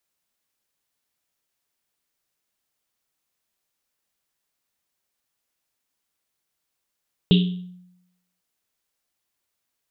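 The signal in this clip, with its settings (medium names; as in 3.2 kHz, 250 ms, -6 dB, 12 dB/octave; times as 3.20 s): Risset drum, pitch 180 Hz, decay 0.87 s, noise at 3.3 kHz, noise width 970 Hz, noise 20%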